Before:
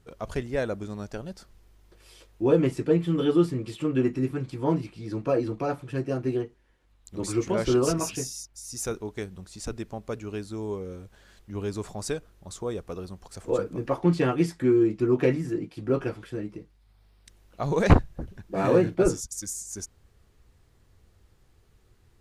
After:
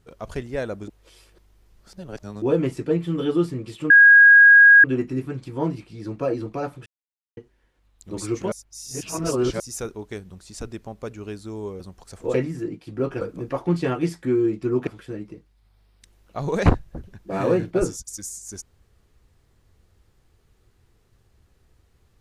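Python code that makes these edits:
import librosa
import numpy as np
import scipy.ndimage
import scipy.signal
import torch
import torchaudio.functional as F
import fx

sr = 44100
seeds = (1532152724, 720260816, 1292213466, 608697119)

y = fx.edit(x, sr, fx.reverse_span(start_s=0.88, length_s=1.54),
    fx.insert_tone(at_s=3.9, length_s=0.94, hz=1640.0, db=-7.0),
    fx.silence(start_s=5.92, length_s=0.51),
    fx.reverse_span(start_s=7.58, length_s=1.08),
    fx.cut(start_s=10.86, length_s=2.18),
    fx.move(start_s=15.24, length_s=0.87, to_s=13.58), tone=tone)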